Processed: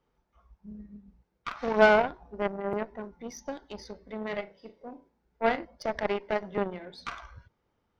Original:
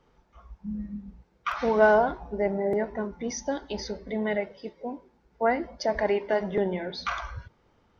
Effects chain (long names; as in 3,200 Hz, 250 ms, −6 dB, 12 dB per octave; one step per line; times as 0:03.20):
0:04.23–0:05.65: flutter between parallel walls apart 6.1 metres, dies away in 0.28 s
harmonic generator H 3 −18 dB, 4 −23 dB, 7 −25 dB, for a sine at −8 dBFS
level +1.5 dB